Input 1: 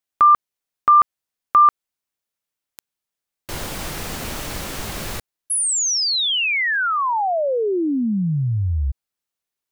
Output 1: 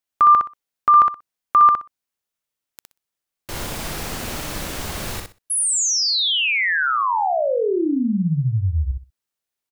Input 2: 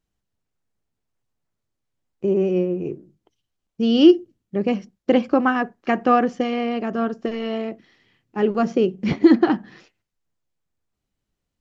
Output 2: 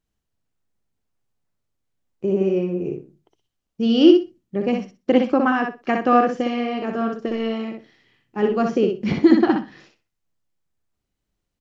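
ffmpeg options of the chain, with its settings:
ffmpeg -i in.wav -af "aecho=1:1:62|124|186:0.596|0.113|0.0215,volume=-1dB" out.wav

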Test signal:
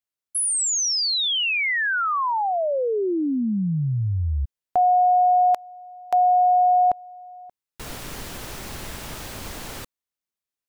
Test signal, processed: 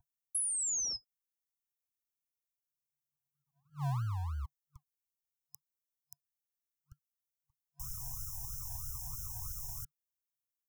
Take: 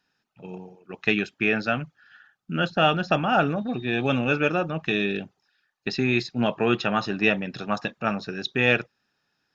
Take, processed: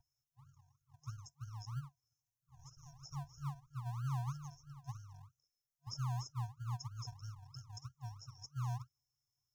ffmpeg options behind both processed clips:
ffmpeg -i in.wav -filter_complex "[0:a]aeval=exprs='val(0)+0.0112*sin(2*PI*470*n/s)':channel_layout=same,afftfilt=real='re*(1-between(b*sr/4096,150,5100))':imag='im*(1-between(b*sr/4096,150,5100))':win_size=4096:overlap=0.75,acrossover=split=170|420|5800[link_01][link_02][link_03][link_04];[link_01]acompressor=threshold=-33dB:ratio=5[link_05];[link_03]acompressor=threshold=-39dB:ratio=6[link_06];[link_04]acompressor=threshold=-33dB:ratio=2[link_07];[link_05][link_02][link_06][link_07]amix=inputs=4:normalize=0,acrossover=split=3000[link_08][link_09];[link_08]acrusher=samples=41:mix=1:aa=0.000001:lfo=1:lforange=24.6:lforate=3.1[link_10];[link_09]aexciter=amount=2.8:drive=2.2:freq=5300[link_11];[link_10][link_11]amix=inputs=2:normalize=0,highshelf=frequency=1500:width_type=q:width=3:gain=-6.5,volume=-5dB" out.wav

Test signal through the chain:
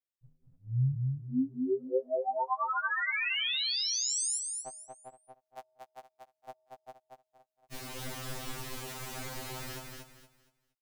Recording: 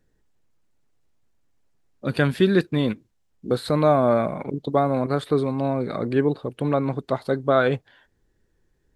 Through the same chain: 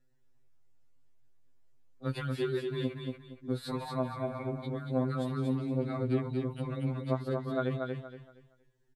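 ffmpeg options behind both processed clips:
ffmpeg -i in.wav -af "acompressor=threshold=-23dB:ratio=6,aecho=1:1:234|468|702|936:0.631|0.177|0.0495|0.0139,afftfilt=real='re*2.45*eq(mod(b,6),0)':imag='im*2.45*eq(mod(b,6),0)':win_size=2048:overlap=0.75,volume=-5dB" out.wav

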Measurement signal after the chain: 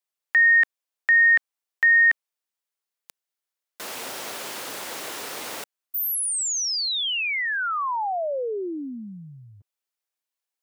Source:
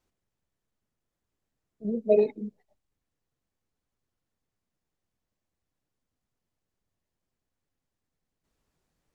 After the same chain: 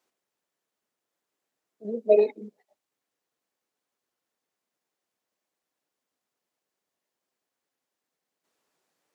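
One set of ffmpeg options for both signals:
ffmpeg -i in.wav -af "highpass=380,volume=4dB" out.wav

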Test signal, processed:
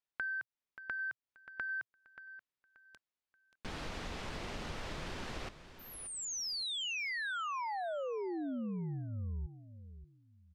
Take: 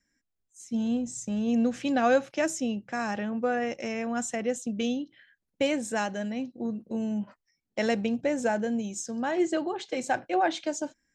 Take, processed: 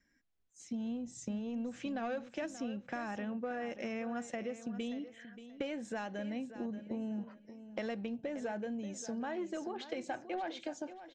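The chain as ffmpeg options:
ffmpeg -i in.wav -filter_complex "[0:a]asplit=2[link_01][link_02];[link_02]aeval=exprs='0.211*sin(PI/2*1.78*val(0)/0.211)':channel_layout=same,volume=-8dB[link_03];[link_01][link_03]amix=inputs=2:normalize=0,lowpass=4300,acompressor=threshold=-33dB:ratio=6,equalizer=frequency=120:width_type=o:width=0.27:gain=-4.5,aecho=1:1:581|1162|1743:0.224|0.0582|0.0151,volume=-4.5dB" out.wav

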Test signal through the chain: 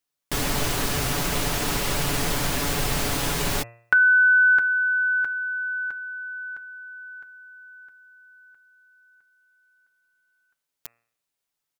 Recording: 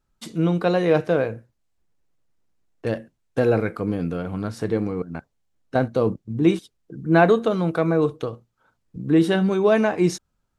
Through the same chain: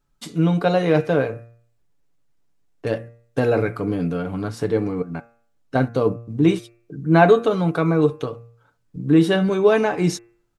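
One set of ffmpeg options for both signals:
ffmpeg -i in.wav -af "aecho=1:1:7:0.46,bandreject=frequency=116.7:width_type=h:width=4,bandreject=frequency=233.4:width_type=h:width=4,bandreject=frequency=350.1:width_type=h:width=4,bandreject=frequency=466.8:width_type=h:width=4,bandreject=frequency=583.5:width_type=h:width=4,bandreject=frequency=700.2:width_type=h:width=4,bandreject=frequency=816.9:width_type=h:width=4,bandreject=frequency=933.6:width_type=h:width=4,bandreject=frequency=1050.3:width_type=h:width=4,bandreject=frequency=1167:width_type=h:width=4,bandreject=frequency=1283.7:width_type=h:width=4,bandreject=frequency=1400.4:width_type=h:width=4,bandreject=frequency=1517.1:width_type=h:width=4,bandreject=frequency=1633.8:width_type=h:width=4,bandreject=frequency=1750.5:width_type=h:width=4,bandreject=frequency=1867.2:width_type=h:width=4,bandreject=frequency=1983.9:width_type=h:width=4,bandreject=frequency=2100.6:width_type=h:width=4,bandreject=frequency=2217.3:width_type=h:width=4,bandreject=frequency=2334:width_type=h:width=4,bandreject=frequency=2450.7:width_type=h:width=4,bandreject=frequency=2567.4:width_type=h:width=4,bandreject=frequency=2684.1:width_type=h:width=4,volume=1.5dB" out.wav

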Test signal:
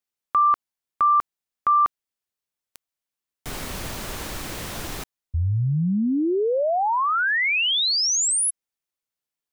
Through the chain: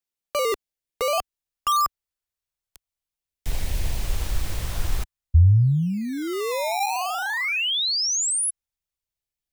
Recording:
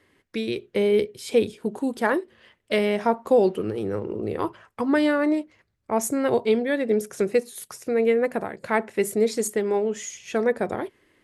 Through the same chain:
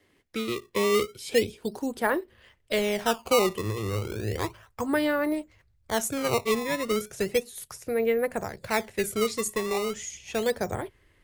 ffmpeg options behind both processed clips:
ffmpeg -i in.wav -filter_complex "[0:a]asubboost=boost=9:cutoff=82,acrossover=split=250|1400|2700[link_01][link_02][link_03][link_04];[link_02]acrusher=samples=16:mix=1:aa=0.000001:lfo=1:lforange=25.6:lforate=0.34[link_05];[link_01][link_05][link_03][link_04]amix=inputs=4:normalize=0,volume=-2dB" out.wav

